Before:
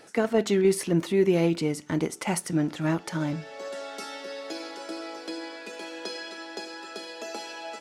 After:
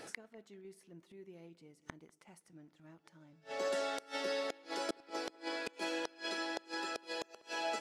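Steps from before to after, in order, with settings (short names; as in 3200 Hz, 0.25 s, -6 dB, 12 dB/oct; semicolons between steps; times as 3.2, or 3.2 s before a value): flipped gate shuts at -26 dBFS, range -33 dB; on a send: analogue delay 0.195 s, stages 4096, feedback 48%, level -22.5 dB; on the sum: gain +1 dB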